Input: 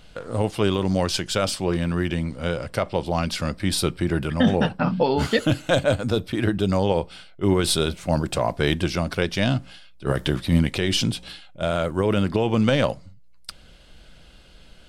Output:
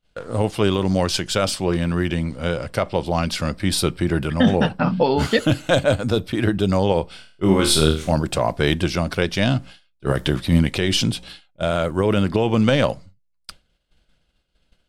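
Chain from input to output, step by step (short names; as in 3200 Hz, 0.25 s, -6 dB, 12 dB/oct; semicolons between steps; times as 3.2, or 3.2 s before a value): expander -34 dBFS; 7.11–8.12 flutter echo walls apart 4.4 m, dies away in 0.38 s; gain +2.5 dB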